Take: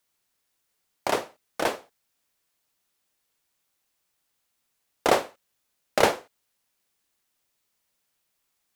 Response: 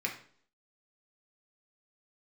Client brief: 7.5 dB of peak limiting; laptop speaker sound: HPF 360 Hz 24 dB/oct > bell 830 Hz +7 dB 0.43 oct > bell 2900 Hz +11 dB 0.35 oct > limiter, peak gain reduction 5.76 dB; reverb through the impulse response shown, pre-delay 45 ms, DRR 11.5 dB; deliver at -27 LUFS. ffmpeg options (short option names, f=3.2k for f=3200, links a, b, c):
-filter_complex "[0:a]alimiter=limit=-10dB:level=0:latency=1,asplit=2[a][b];[1:a]atrim=start_sample=2205,adelay=45[c];[b][c]afir=irnorm=-1:irlink=0,volume=-16.5dB[d];[a][d]amix=inputs=2:normalize=0,highpass=f=360:w=0.5412,highpass=f=360:w=1.3066,equalizer=f=830:t=o:w=0.43:g=7,equalizer=f=2.9k:t=o:w=0.35:g=11,volume=2dB,alimiter=limit=-9.5dB:level=0:latency=1"